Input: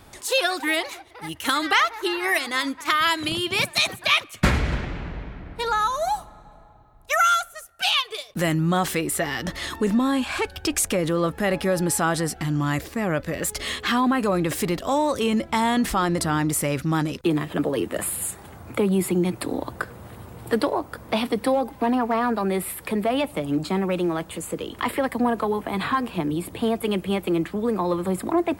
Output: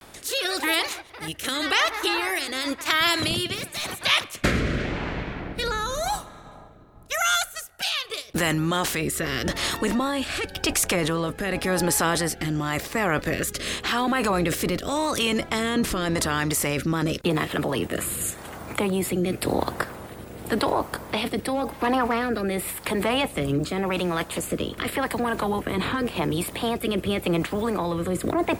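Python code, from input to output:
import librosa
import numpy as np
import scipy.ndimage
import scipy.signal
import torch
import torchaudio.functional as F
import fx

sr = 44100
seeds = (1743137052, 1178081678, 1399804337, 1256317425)

p1 = fx.spec_clip(x, sr, under_db=12)
p2 = fx.over_compress(p1, sr, threshold_db=-28.0, ratio=-1.0)
p3 = p1 + (p2 * librosa.db_to_amplitude(-1.5))
p4 = fx.clip_hard(p3, sr, threshold_db=-21.0, at=(3.55, 4.03))
p5 = fx.rotary(p4, sr, hz=0.9)
p6 = fx.vibrato(p5, sr, rate_hz=0.42, depth_cents=48.0)
y = p6 * librosa.db_to_amplitude(-2.0)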